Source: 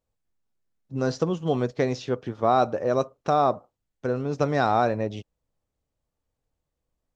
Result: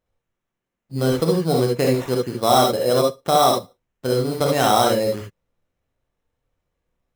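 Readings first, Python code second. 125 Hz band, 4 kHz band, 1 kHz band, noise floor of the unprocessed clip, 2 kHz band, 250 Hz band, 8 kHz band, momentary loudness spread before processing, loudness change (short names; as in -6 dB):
+5.5 dB, +15.5 dB, +5.0 dB, -83 dBFS, +4.0 dB, +5.5 dB, n/a, 10 LU, +6.0 dB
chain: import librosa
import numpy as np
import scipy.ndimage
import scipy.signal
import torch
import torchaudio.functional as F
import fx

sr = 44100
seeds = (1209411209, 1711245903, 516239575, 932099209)

y = fx.sample_hold(x, sr, seeds[0], rate_hz=4600.0, jitter_pct=0)
y = fx.rev_gated(y, sr, seeds[1], gate_ms=90, shape='rising', drr_db=0.0)
y = y * 10.0 ** (2.5 / 20.0)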